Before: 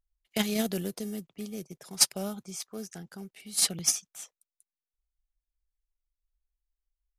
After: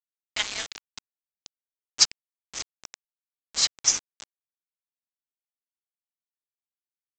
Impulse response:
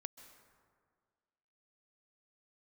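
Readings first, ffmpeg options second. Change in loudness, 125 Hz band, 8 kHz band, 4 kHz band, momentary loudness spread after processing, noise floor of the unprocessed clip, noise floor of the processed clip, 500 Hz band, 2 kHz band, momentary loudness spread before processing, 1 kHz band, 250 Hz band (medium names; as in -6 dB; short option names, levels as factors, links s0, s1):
+4.0 dB, under -15 dB, +2.5 dB, +5.5 dB, 18 LU, under -85 dBFS, under -85 dBFS, -13.0 dB, +6.0 dB, 20 LU, +1.0 dB, -21.5 dB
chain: -af "highpass=f=1000:w=0.5412,highpass=f=1000:w=1.3066,aresample=16000,acrusher=bits=5:mix=0:aa=0.000001,aresample=44100,volume=1.88"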